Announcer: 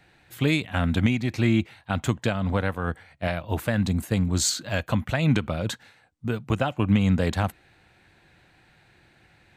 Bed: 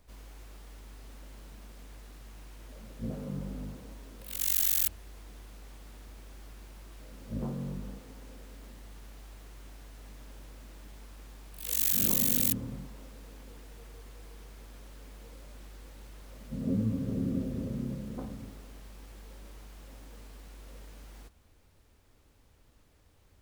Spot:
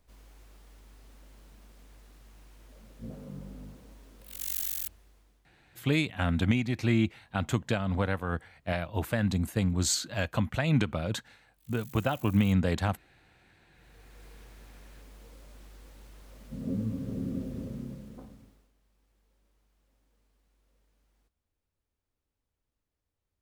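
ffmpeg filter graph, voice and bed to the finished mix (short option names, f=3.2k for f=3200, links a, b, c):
-filter_complex "[0:a]adelay=5450,volume=-4dB[a];[1:a]volume=17dB,afade=t=out:st=4.58:d=0.9:silence=0.105925,afade=t=in:st=13.71:d=0.54:silence=0.0749894,afade=t=out:st=17.61:d=1.11:silence=0.1[b];[a][b]amix=inputs=2:normalize=0"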